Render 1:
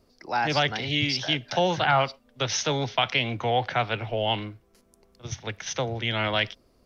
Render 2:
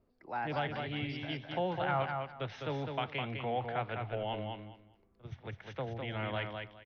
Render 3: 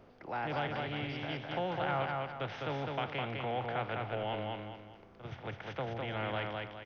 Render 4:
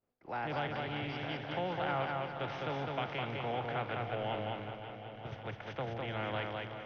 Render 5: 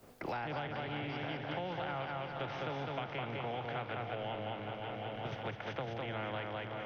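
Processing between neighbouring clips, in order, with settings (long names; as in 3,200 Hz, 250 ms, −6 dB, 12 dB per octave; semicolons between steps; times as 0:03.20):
high-frequency loss of the air 460 metres; on a send: repeating echo 205 ms, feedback 21%, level −5 dB; on the sum: level −9 dB
compressor on every frequency bin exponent 0.6; level −3.5 dB
downward expander −43 dBFS; feedback echo with a long and a short gap by turns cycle 929 ms, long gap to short 1.5 to 1, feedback 39%, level −10.5 dB; level −1 dB
multiband upward and downward compressor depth 100%; level −3 dB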